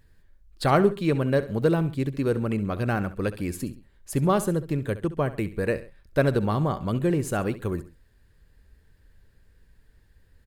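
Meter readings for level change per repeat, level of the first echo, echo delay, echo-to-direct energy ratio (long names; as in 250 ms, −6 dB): −8.0 dB, −15.0 dB, 67 ms, −14.5 dB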